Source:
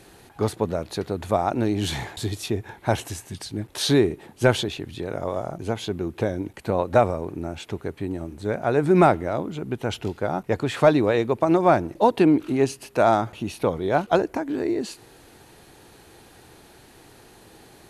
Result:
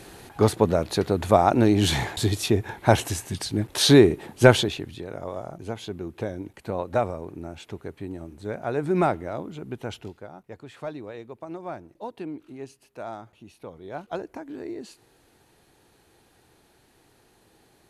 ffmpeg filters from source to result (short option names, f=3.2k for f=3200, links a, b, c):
-af "volume=12dB,afade=t=out:st=4.44:d=0.6:silence=0.298538,afade=t=out:st=9.83:d=0.47:silence=0.251189,afade=t=in:st=13.68:d=0.73:silence=0.421697"